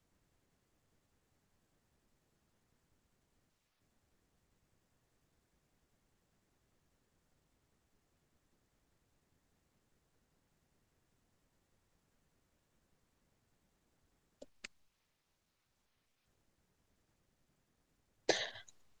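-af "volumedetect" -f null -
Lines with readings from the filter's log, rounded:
mean_volume: -54.4 dB
max_volume: -16.2 dB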